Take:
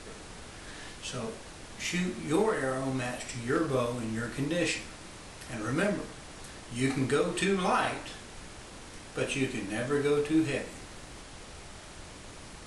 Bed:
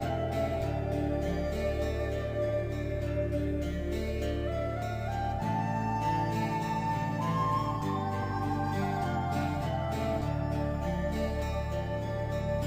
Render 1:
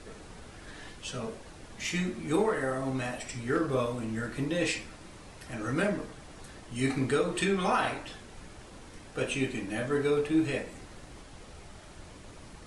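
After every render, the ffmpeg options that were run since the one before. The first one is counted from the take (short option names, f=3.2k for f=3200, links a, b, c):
-af "afftdn=nr=6:nf=-47"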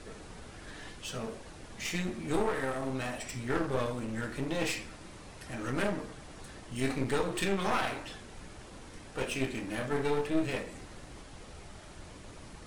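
-af "aeval=exprs='clip(val(0),-1,0.0126)':c=same"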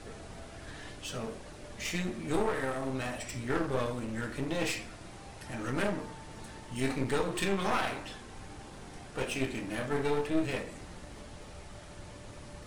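-filter_complex "[1:a]volume=-21.5dB[a];[0:a][a]amix=inputs=2:normalize=0"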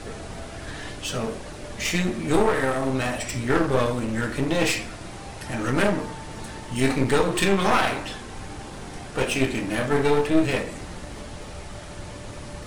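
-af "volume=10dB"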